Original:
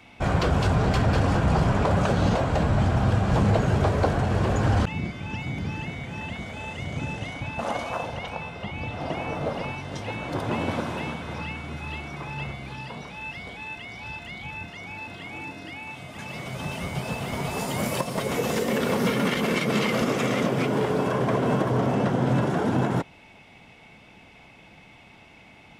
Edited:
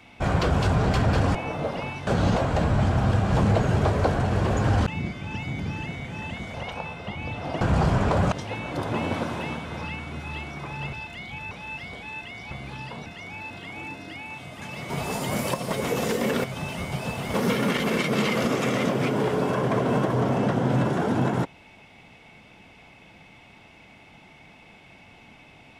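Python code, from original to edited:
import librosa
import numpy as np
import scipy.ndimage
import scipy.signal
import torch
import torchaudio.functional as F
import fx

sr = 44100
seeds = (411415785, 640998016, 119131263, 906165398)

y = fx.edit(x, sr, fx.swap(start_s=1.35, length_s=0.71, other_s=9.17, other_length_s=0.72),
    fx.cut(start_s=6.53, length_s=1.57),
    fx.swap(start_s=12.5, length_s=0.55, other_s=14.05, other_length_s=0.58),
    fx.move(start_s=16.47, length_s=0.9, to_s=18.91), tone=tone)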